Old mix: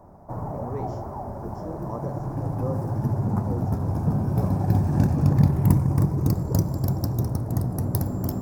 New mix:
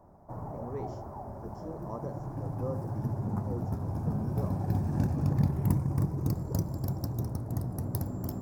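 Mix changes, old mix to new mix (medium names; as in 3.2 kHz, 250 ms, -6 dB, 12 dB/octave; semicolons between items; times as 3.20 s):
background -6.0 dB; reverb: off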